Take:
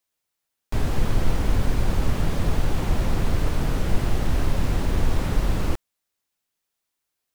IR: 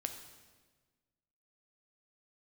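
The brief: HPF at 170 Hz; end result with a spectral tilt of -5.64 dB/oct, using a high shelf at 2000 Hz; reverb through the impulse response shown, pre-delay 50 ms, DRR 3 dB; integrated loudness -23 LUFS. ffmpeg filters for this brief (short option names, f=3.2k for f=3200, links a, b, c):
-filter_complex "[0:a]highpass=170,highshelf=f=2k:g=-5,asplit=2[a][b];[1:a]atrim=start_sample=2205,adelay=50[c];[b][c]afir=irnorm=-1:irlink=0,volume=-2.5dB[d];[a][d]amix=inputs=2:normalize=0,volume=7dB"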